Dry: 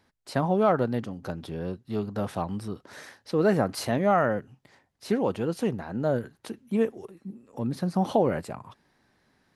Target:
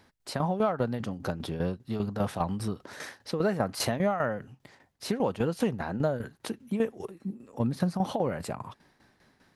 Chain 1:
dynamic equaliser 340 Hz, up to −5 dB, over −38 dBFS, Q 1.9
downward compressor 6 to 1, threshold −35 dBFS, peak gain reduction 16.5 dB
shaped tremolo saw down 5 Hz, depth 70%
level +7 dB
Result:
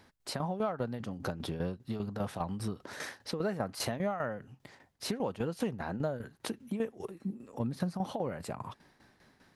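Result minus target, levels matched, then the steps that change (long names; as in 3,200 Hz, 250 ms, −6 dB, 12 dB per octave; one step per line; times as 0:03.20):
downward compressor: peak gain reduction +6 dB
change: downward compressor 6 to 1, threshold −27.5 dBFS, peak gain reduction 10 dB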